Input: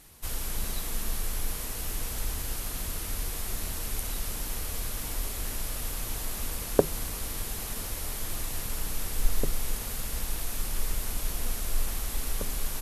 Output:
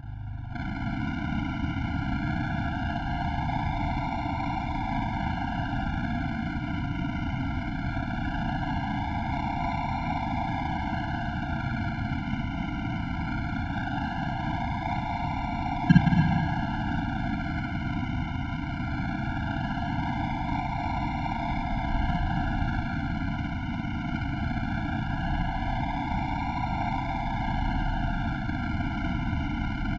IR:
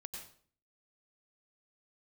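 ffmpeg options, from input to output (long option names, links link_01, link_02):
-filter_complex "[0:a]bandreject=frequency=50:width_type=h:width=6,bandreject=frequency=100:width_type=h:width=6,bandreject=frequency=150:width_type=h:width=6,bandreject=frequency=200:width_type=h:width=6,bandreject=frequency=250:width_type=h:width=6,bandreject=frequency=300:width_type=h:width=6,bandreject=frequency=350:width_type=h:width=6,acrusher=samples=17:mix=1:aa=0.000001:lfo=1:lforange=10.2:lforate=0.42,crystalizer=i=6:c=0,tremolo=f=67:d=1,asplit=2[link_01][link_02];[link_02]asetrate=88200,aresample=44100,atempo=0.5,volume=-10dB[link_03];[link_01][link_03]amix=inputs=2:normalize=0,aeval=exprs='val(0)+0.0141*(sin(2*PI*60*n/s)+sin(2*PI*2*60*n/s)/2+sin(2*PI*3*60*n/s)/3+sin(2*PI*4*60*n/s)/4+sin(2*PI*5*60*n/s)/5)':channel_layout=same,acrusher=bits=8:mix=0:aa=0.000001,highpass=220,lowpass=2900,aecho=1:1:71:0.422,asplit=2[link_04][link_05];[1:a]atrim=start_sample=2205,lowshelf=frequency=250:gain=7.5,adelay=24[link_06];[link_05][link_06]afir=irnorm=-1:irlink=0,volume=4.5dB[link_07];[link_04][link_07]amix=inputs=2:normalize=0,asetrate=18846,aresample=44100,afftfilt=real='re*eq(mod(floor(b*sr/1024/340),2),0)':imag='im*eq(mod(floor(b*sr/1024/340),2),0)':win_size=1024:overlap=0.75,volume=7.5dB"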